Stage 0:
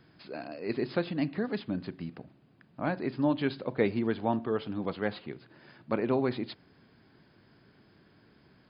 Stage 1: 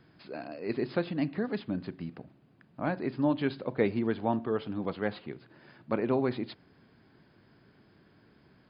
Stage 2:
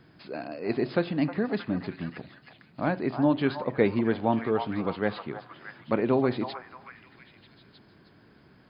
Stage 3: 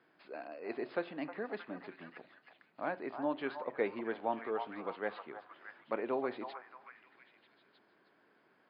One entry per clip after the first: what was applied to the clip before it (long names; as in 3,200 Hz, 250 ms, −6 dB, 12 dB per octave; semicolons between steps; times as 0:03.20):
high-shelf EQ 3,800 Hz −5 dB
echo through a band-pass that steps 313 ms, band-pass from 940 Hz, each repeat 0.7 octaves, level −5 dB; level +4 dB
band-pass filter 430–2,800 Hz; level −7 dB